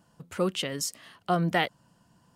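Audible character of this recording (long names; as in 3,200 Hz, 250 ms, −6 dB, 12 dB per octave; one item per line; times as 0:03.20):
background noise floor −66 dBFS
spectral slope −4.0 dB per octave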